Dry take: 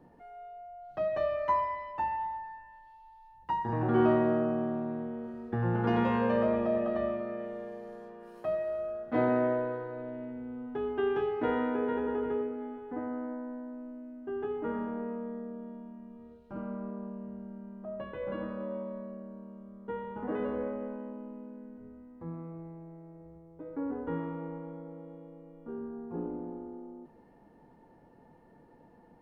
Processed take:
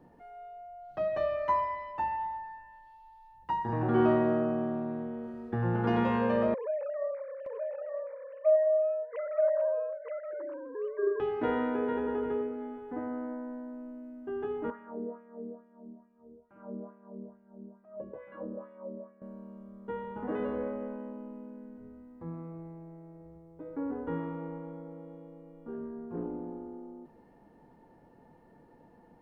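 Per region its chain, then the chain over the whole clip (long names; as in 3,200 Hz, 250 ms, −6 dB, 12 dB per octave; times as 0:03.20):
0:06.54–0:11.20: three sine waves on the formant tracks + single-tap delay 923 ms −3.5 dB
0:14.70–0:19.22: spectral tilt −3.5 dB per octave + auto-filter band-pass sine 2.3 Hz 340–2,300 Hz + one half of a high-frequency compander decoder only
0:25.73–0:26.24: notch filter 810 Hz, Q 6.6 + highs frequency-modulated by the lows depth 0.25 ms
whole clip: no processing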